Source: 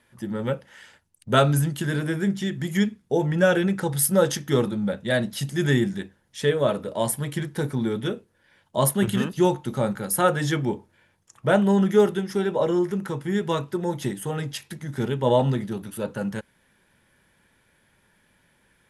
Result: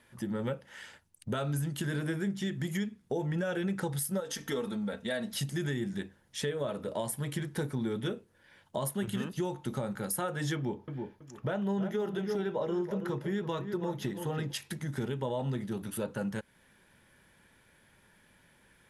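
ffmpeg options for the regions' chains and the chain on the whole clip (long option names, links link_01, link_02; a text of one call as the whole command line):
ffmpeg -i in.wav -filter_complex "[0:a]asettb=1/sr,asplit=3[link_01][link_02][link_03];[link_01]atrim=end=4.204[link_04];[link_02]atrim=start=4.2:end=5.34,asetpts=PTS-STARTPTS,afade=type=in:duration=0.004:curve=qsin,afade=type=out:start_time=1.136:duration=0.004:curve=qsin,equalizer=frequency=160:width_type=o:width=1.2:gain=-8.5,aecho=1:1:4.4:0.56,atrim=end_sample=50274,acompressor=threshold=-27dB:ratio=2:attack=3.2:release=140:knee=1:detection=peak[link_05];[link_03]atrim=start=5.336[link_06];[link_04][link_05]acrossfade=duration=0.004:curve1=hsin:curve2=qsin[link_07];[link_07][link_06]acrossfade=duration=0.004:curve1=qsin:curve2=hsin,asettb=1/sr,asplit=3[link_08][link_09][link_10];[link_08]atrim=end=10.554[link_11];[link_09]atrim=start=10.55:end=14.53,asetpts=PTS-STARTPTS,afade=type=in:duration=0.004:curve=qsin,afade=type=out:start_time=3.976:duration=0.004:curve=qsin,equalizer=frequency=8700:width=2.2:gain=-13,bandreject=frequency=2200:width=29,asplit=2[link_12][link_13];[link_13]adelay=327,lowpass=frequency=2000:poles=1,volume=-11dB,asplit=2[link_14][link_15];[link_15]adelay=327,lowpass=frequency=2000:poles=1,volume=0.2,asplit=2[link_16][link_17];[link_17]adelay=327,lowpass=frequency=2000:poles=1,volume=0.2[link_18];[link_12][link_14][link_16][link_18]amix=inputs=4:normalize=0,atrim=end_sample=175518[link_19];[link_10]atrim=start=14.526[link_20];[link_11][link_19]acrossfade=duration=0.004:curve1=hsin:curve2=qsin[link_21];[link_21][link_20]acrossfade=duration=0.004:curve1=qsin:curve2=hsin,alimiter=limit=-16.5dB:level=0:latency=1:release=263,acompressor=threshold=-35dB:ratio=2" out.wav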